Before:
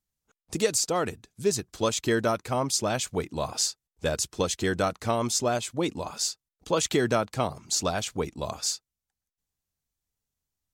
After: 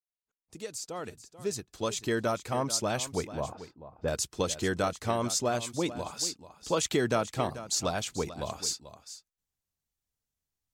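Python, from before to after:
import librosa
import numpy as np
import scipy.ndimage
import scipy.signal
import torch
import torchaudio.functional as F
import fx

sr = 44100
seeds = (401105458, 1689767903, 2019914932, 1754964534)

y = fx.fade_in_head(x, sr, length_s=2.6)
y = fx.lowpass(y, sr, hz=1100.0, slope=12, at=(3.28, 4.08))
y = y + 10.0 ** (-14.0 / 20.0) * np.pad(y, (int(438 * sr / 1000.0), 0))[:len(y)]
y = F.gain(torch.from_numpy(y), -3.0).numpy()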